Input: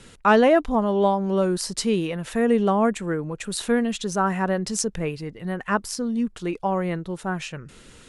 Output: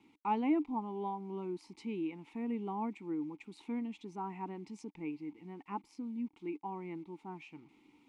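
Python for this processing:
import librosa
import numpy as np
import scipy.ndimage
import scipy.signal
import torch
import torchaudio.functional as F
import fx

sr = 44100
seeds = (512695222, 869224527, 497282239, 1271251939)

y = fx.quant_dither(x, sr, seeds[0], bits=8, dither='none')
y = fx.vowel_filter(y, sr, vowel='u')
y = y * 10.0 ** (-3.0 / 20.0)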